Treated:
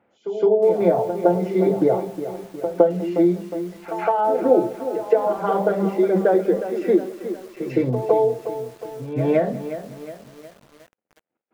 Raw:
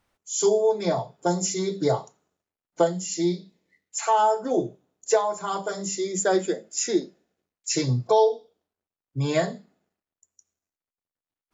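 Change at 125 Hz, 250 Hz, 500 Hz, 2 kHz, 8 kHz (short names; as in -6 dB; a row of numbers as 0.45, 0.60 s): +1.5 dB, +7.0 dB, +6.0 dB, 0.0 dB, n/a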